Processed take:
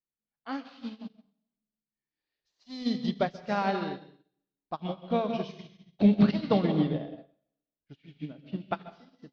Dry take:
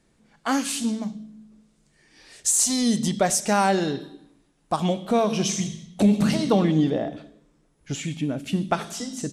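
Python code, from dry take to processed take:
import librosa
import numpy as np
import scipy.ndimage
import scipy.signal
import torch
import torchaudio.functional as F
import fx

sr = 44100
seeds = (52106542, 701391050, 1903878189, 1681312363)

y = scipy.signal.sosfilt(scipy.signal.butter(8, 4700.0, 'lowpass', fs=sr, output='sos'), x)
y = fx.rev_plate(y, sr, seeds[0], rt60_s=1.0, hf_ratio=1.0, predelay_ms=120, drr_db=4.5)
y = fx.upward_expand(y, sr, threshold_db=-39.0, expansion=2.5)
y = y * librosa.db_to_amplitude(-1.5)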